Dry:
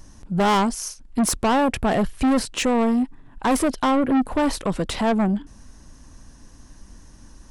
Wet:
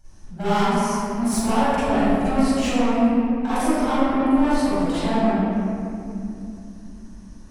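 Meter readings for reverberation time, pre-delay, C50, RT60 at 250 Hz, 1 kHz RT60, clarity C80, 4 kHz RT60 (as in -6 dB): 2.8 s, 38 ms, -8.5 dB, 4.7 s, 2.4 s, -4.0 dB, 1.4 s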